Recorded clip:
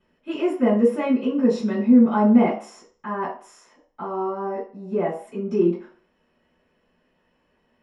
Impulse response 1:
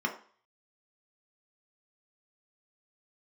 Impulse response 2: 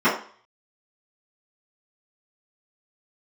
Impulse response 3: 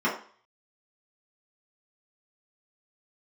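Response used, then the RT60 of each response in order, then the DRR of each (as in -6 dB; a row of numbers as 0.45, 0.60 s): 2; 0.45, 0.45, 0.45 s; 0.5, -17.0, -8.5 dB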